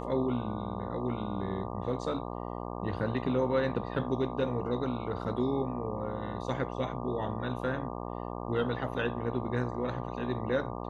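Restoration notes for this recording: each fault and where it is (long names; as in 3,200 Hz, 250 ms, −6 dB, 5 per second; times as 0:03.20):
mains buzz 60 Hz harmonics 20 −38 dBFS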